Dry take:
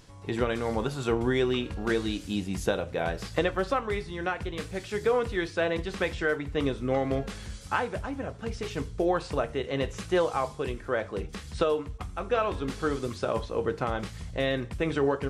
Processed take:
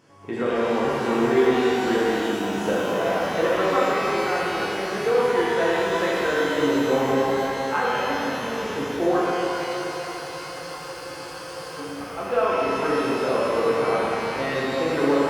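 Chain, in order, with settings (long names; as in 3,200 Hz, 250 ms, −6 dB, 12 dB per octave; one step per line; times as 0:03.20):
high-pass filter 220 Hz 12 dB per octave
high-shelf EQ 2,800 Hz −10.5 dB
notch filter 3,900 Hz, Q 5
on a send: delay with a band-pass on its return 486 ms, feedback 67%, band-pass 1,300 Hz, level −16.5 dB
on the sum: frozen spectrum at 0:09.24, 2.54 s
reverb with rising layers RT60 3.2 s, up +12 semitones, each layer −8 dB, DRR −7.5 dB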